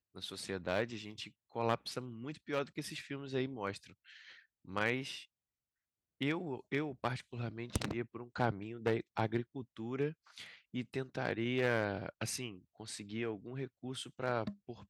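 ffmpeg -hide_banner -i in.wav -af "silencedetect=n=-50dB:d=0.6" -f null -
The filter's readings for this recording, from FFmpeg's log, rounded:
silence_start: 5.25
silence_end: 6.21 | silence_duration: 0.96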